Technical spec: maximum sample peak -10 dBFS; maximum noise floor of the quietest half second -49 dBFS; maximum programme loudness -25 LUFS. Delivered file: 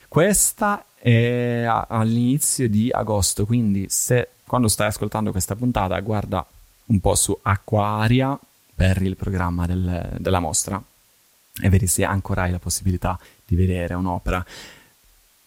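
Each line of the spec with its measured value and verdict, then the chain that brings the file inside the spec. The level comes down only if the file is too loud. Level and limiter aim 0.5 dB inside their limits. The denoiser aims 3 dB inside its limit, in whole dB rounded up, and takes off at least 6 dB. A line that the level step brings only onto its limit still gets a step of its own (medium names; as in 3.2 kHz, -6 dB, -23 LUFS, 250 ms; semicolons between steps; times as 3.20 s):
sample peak -6.0 dBFS: fail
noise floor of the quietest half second -58 dBFS: pass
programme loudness -21.0 LUFS: fail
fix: trim -4.5 dB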